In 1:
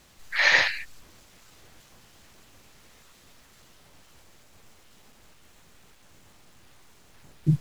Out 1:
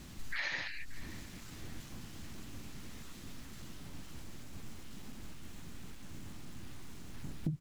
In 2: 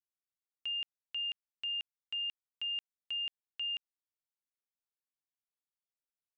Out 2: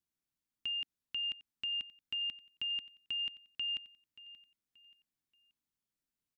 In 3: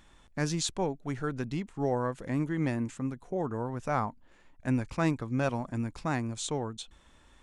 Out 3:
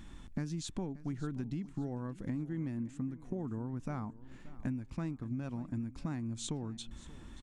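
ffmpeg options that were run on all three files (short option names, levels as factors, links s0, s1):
-filter_complex "[0:a]lowshelf=f=370:t=q:w=1.5:g=8.5,acompressor=threshold=0.0158:ratio=20,asplit=2[s0][s1];[s1]aecho=0:1:580|1160|1740:0.126|0.0428|0.0146[s2];[s0][s2]amix=inputs=2:normalize=0,volume=1.26"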